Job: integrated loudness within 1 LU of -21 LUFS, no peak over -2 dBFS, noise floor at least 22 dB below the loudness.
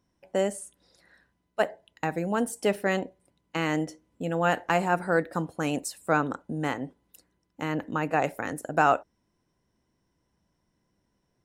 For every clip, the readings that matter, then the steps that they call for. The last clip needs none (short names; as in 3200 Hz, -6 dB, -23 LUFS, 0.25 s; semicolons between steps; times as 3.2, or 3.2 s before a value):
loudness -28.5 LUFS; peak -8.5 dBFS; loudness target -21.0 LUFS
-> gain +7.5 dB; limiter -2 dBFS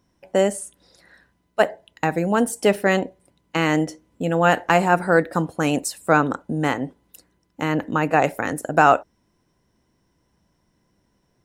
loudness -21.0 LUFS; peak -2.0 dBFS; noise floor -68 dBFS